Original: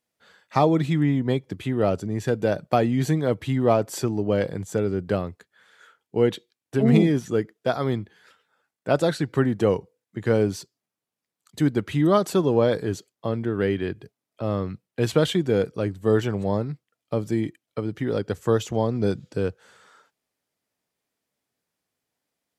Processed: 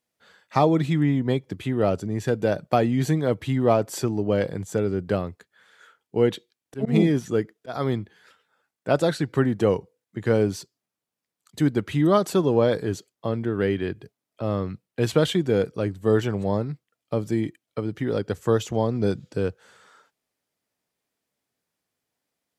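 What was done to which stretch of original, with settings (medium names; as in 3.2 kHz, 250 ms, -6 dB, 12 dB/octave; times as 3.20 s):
6.18–7.75 s: slow attack 144 ms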